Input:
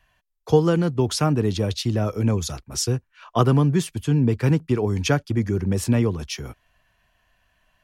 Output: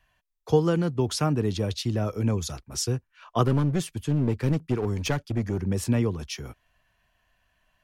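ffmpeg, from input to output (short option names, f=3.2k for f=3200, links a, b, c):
-filter_complex "[0:a]asettb=1/sr,asplit=3[a][b][c];[a]atrim=end=3.454[d];[b]atrim=start=3.45:end=5.62,asetpts=PTS-STARTPTS,afade=t=in:d=0.004:c=qsin,afade=t=out:st=2.166:d=0.004:c=qsin,aeval=exprs='clip(val(0),-1,0.0794)':c=same[e];[c]atrim=start=5.616[f];[d][e]acrossfade=d=0.004:c1=hsin:c2=qsin[g];[g][f]acrossfade=d=0.004:c1=qsin:c2=hsin,volume=-4dB"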